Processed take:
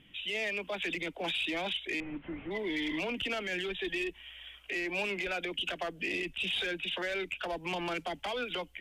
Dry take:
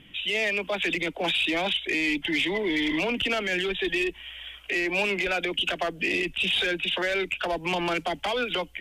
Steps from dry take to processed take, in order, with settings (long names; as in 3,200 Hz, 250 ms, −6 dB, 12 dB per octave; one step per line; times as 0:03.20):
0:02.00–0:02.51: linear delta modulator 16 kbit/s, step −44 dBFS
level −8 dB